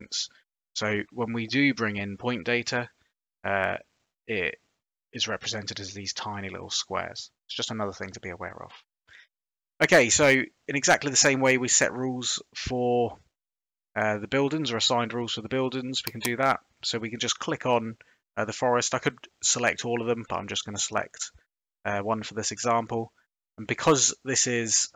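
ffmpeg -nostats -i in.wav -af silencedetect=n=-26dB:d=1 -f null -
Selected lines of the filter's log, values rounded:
silence_start: 8.63
silence_end: 9.81 | silence_duration: 1.17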